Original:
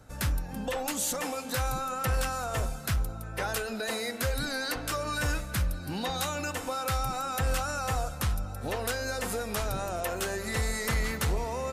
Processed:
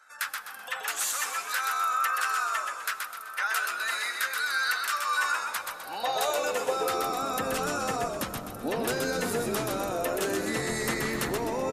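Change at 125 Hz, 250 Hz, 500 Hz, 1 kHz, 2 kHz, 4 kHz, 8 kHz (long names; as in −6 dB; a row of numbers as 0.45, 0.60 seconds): −10.0, +1.5, +3.0, +4.5, +5.5, +2.0, +1.5 decibels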